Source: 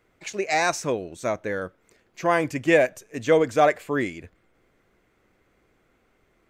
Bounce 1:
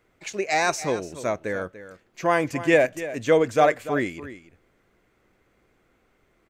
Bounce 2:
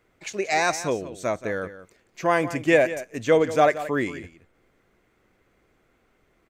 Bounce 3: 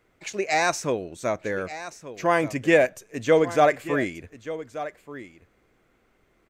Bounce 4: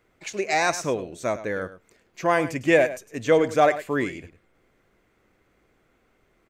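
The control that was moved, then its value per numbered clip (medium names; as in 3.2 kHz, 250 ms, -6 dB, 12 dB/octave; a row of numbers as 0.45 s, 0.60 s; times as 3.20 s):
delay, time: 291 ms, 177 ms, 1182 ms, 104 ms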